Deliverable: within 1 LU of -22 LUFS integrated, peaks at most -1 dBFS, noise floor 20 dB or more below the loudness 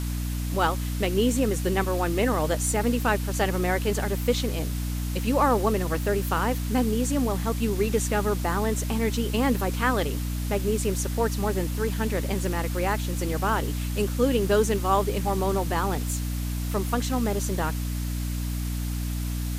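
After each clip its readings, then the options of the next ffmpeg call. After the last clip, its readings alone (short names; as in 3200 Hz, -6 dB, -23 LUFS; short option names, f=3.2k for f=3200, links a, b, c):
hum 60 Hz; harmonics up to 300 Hz; hum level -26 dBFS; noise floor -29 dBFS; noise floor target -46 dBFS; loudness -26.0 LUFS; peak -9.0 dBFS; loudness target -22.0 LUFS
-> -af "bandreject=f=60:t=h:w=4,bandreject=f=120:t=h:w=4,bandreject=f=180:t=h:w=4,bandreject=f=240:t=h:w=4,bandreject=f=300:t=h:w=4"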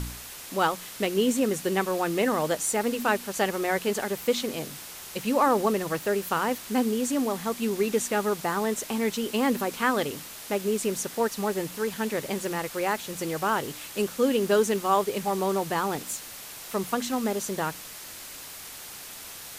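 hum none; noise floor -42 dBFS; noise floor target -47 dBFS
-> -af "afftdn=nr=6:nf=-42"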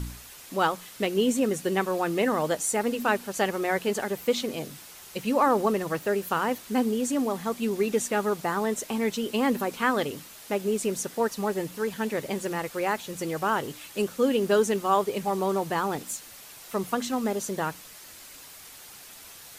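noise floor -47 dBFS; noise floor target -48 dBFS
-> -af "afftdn=nr=6:nf=-47"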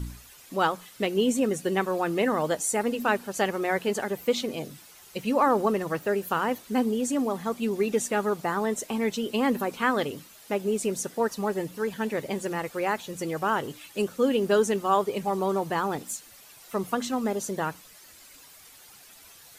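noise floor -51 dBFS; loudness -27.5 LUFS; peak -10.5 dBFS; loudness target -22.0 LUFS
-> -af "volume=5.5dB"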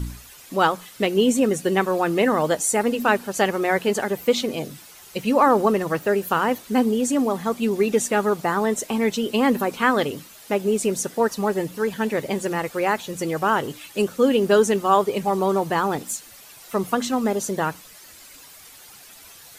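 loudness -22.0 LUFS; peak -5.0 dBFS; noise floor -46 dBFS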